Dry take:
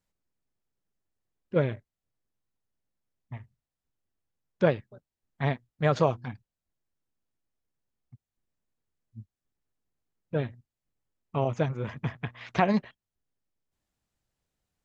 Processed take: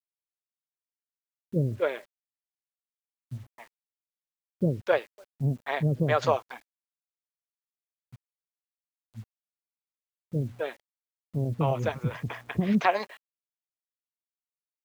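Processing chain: bands offset in time lows, highs 0.26 s, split 410 Hz; requantised 10-bit, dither none; gain +2.5 dB

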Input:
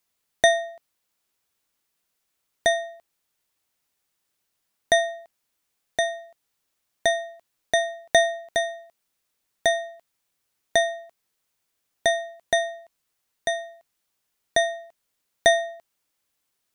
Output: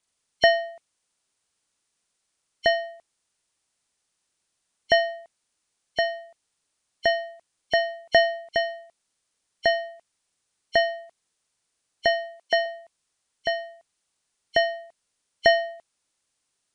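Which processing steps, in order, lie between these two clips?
nonlinear frequency compression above 2100 Hz 1.5:1; 12.07–12.66 HPF 300 Hz 12 dB/oct

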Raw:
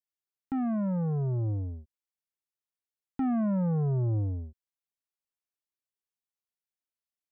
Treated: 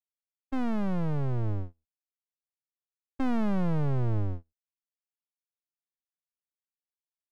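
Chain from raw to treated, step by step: half-wave rectifier; gate -35 dBFS, range -37 dB; gain +4.5 dB

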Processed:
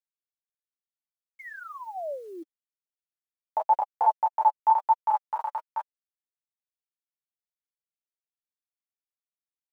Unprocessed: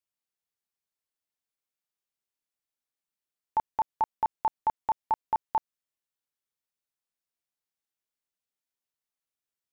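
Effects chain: reverse delay 0.135 s, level 0 dB; high-pass sweep 520 Hz -> 1400 Hz, 2.54–6.13; chorus voices 6, 0.23 Hz, delay 12 ms, depth 2.6 ms; painted sound fall, 1.39–2.43, 320–2200 Hz -39 dBFS; bell 570 Hz +14 dB 0.71 oct; bit-crush 10-bit; flange 1 Hz, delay 3.9 ms, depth 3.1 ms, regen +14%

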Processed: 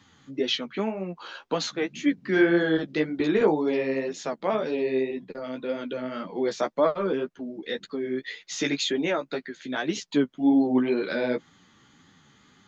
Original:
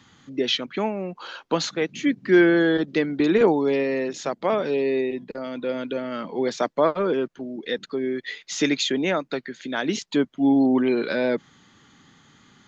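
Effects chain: flange 1.9 Hz, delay 9.9 ms, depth 6 ms, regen +12%

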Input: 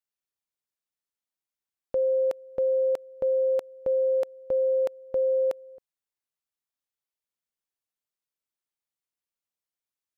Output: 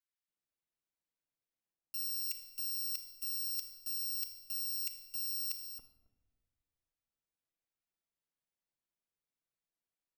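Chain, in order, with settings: FFT order left unsorted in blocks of 256 samples; reverse; compressor 6:1, threshold -39 dBFS, peak gain reduction 15 dB; reverse; bands offset in time highs, lows 0.28 s, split 1100 Hz; shoebox room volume 880 m³, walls mixed, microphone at 0.7 m; mismatched tape noise reduction decoder only

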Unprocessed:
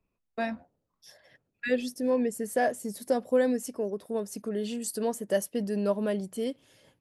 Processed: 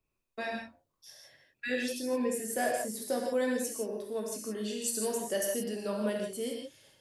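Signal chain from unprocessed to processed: high shelf 2200 Hz +8 dB; non-linear reverb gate 0.19 s flat, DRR -1 dB; gain -7 dB

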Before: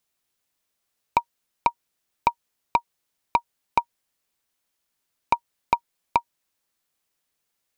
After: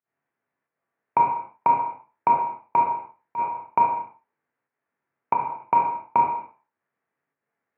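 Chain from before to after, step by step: spectral trails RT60 0.33 s; elliptic band-pass 110–1900 Hz, stop band 40 dB; in parallel at 0 dB: limiter -12.5 dBFS, peak gain reduction 7 dB; on the sum: pump 90 bpm, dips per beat 1, -23 dB, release 0.138 s; non-linear reverb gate 0.26 s falling, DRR 0.5 dB; gain -5 dB

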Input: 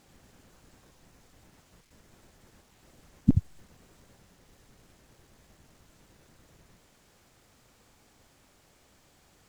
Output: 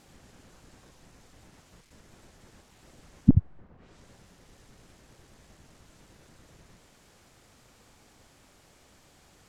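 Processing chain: treble ducked by the level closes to 1300 Hz, closed at -38 dBFS; gain +3.5 dB

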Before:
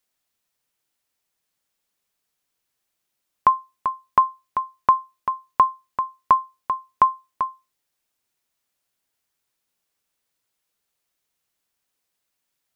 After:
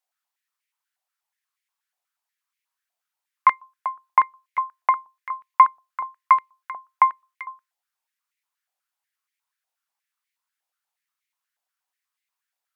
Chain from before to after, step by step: added harmonics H 2 -7 dB, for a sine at -4.5 dBFS; stepped high-pass 8.3 Hz 740–2100 Hz; gain -8.5 dB

